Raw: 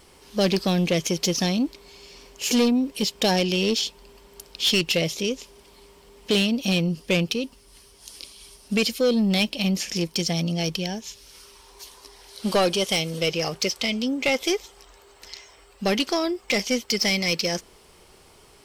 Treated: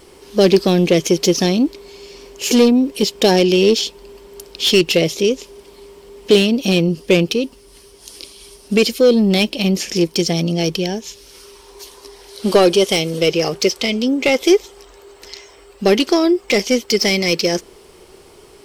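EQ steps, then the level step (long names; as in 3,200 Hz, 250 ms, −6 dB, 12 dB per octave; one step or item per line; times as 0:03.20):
parametric band 380 Hz +9 dB 0.79 octaves
+5.0 dB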